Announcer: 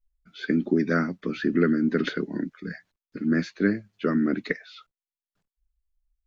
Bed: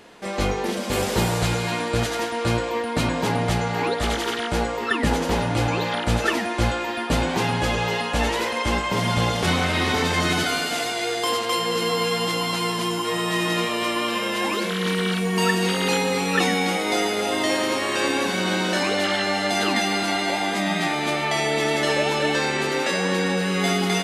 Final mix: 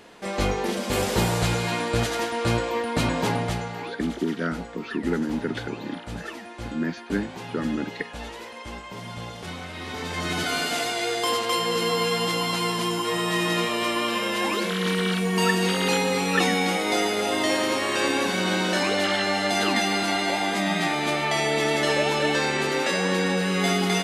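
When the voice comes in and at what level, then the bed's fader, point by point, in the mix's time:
3.50 s, -4.0 dB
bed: 3.27 s -1 dB
4.08 s -14.5 dB
9.75 s -14.5 dB
10.62 s -1 dB

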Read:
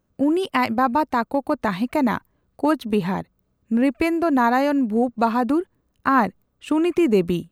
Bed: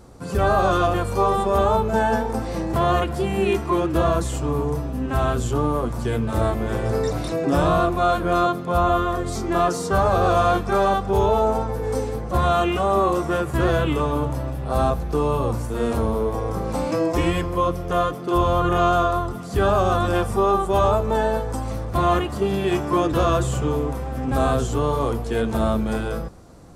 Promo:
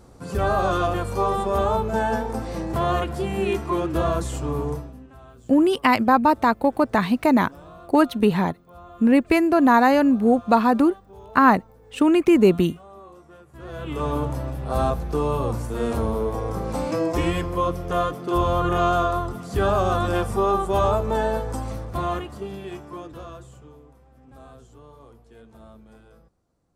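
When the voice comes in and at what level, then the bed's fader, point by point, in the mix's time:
5.30 s, +2.5 dB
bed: 4.72 s -3 dB
5.17 s -25.5 dB
13.49 s -25.5 dB
14.07 s -2 dB
21.61 s -2 dB
23.84 s -26 dB

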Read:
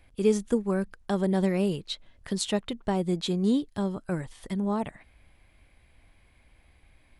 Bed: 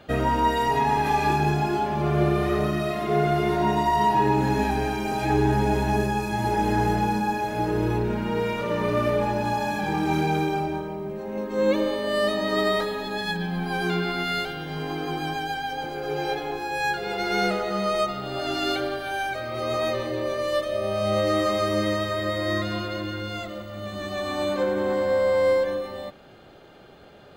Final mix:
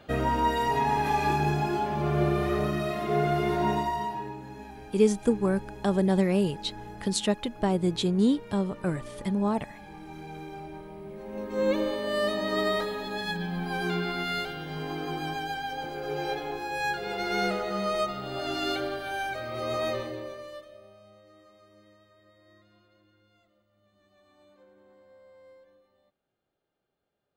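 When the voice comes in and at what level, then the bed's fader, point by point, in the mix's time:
4.75 s, +1.5 dB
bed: 3.73 s -3.5 dB
4.41 s -20 dB
10.13 s -20 dB
11.57 s -4 dB
19.96 s -4 dB
21.20 s -34 dB

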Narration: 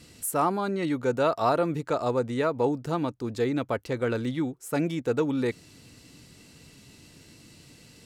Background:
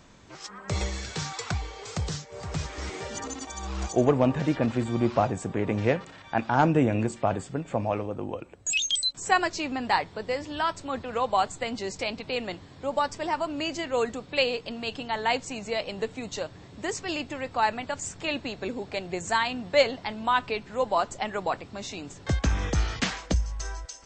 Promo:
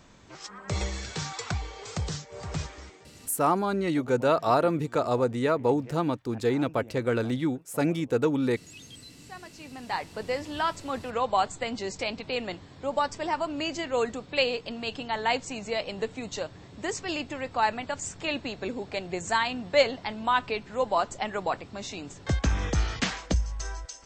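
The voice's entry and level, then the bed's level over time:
3.05 s, +1.0 dB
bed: 2.61 s -1 dB
3.13 s -23 dB
9.31 s -23 dB
10.20 s -0.5 dB

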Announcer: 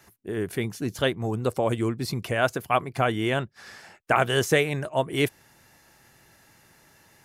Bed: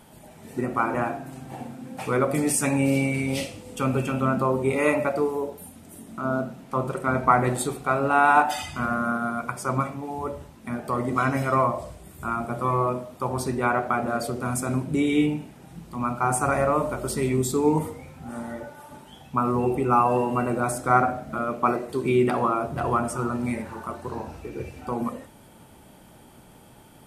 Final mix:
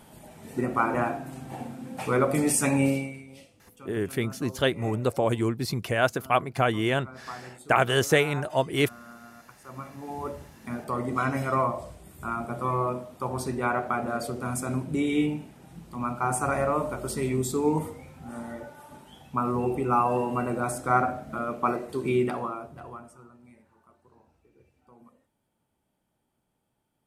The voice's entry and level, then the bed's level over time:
3.60 s, 0.0 dB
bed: 2.86 s -0.5 dB
3.27 s -21.5 dB
9.61 s -21.5 dB
10.10 s -3.5 dB
22.17 s -3.5 dB
23.37 s -27 dB

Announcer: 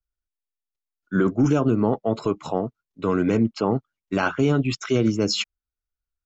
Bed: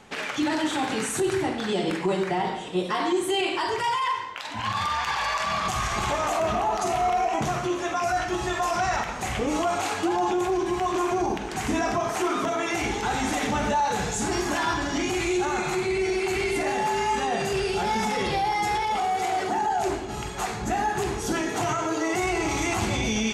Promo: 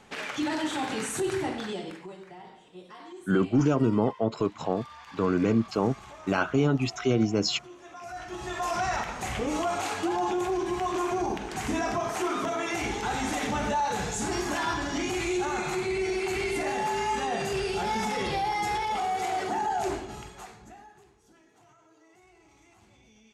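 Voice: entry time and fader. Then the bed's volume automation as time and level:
2.15 s, -3.5 dB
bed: 1.58 s -4 dB
2.17 s -20.5 dB
7.81 s -20.5 dB
8.70 s -3.5 dB
19.98 s -3.5 dB
21.15 s -33.5 dB

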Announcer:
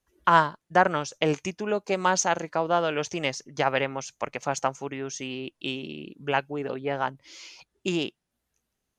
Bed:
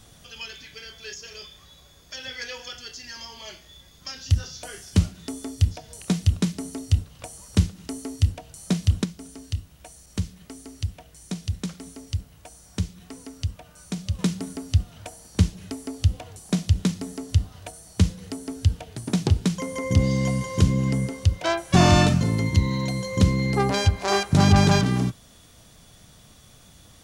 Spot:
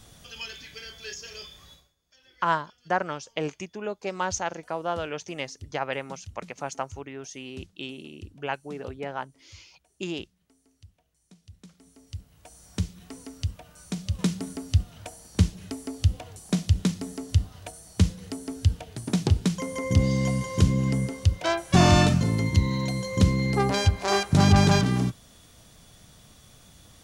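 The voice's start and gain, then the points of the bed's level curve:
2.15 s, -5.5 dB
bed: 1.73 s -0.5 dB
1.96 s -23.5 dB
11.38 s -23.5 dB
12.64 s -1.5 dB

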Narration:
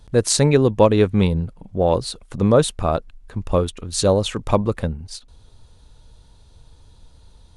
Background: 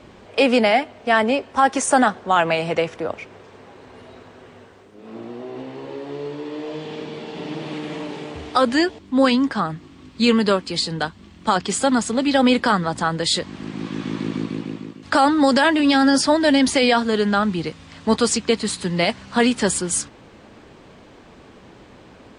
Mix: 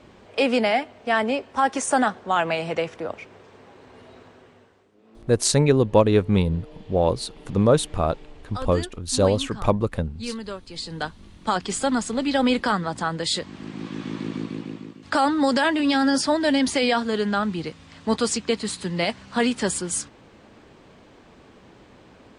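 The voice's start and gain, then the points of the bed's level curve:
5.15 s, -2.5 dB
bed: 4.27 s -4.5 dB
5.11 s -16 dB
10.60 s -16 dB
11.05 s -4.5 dB

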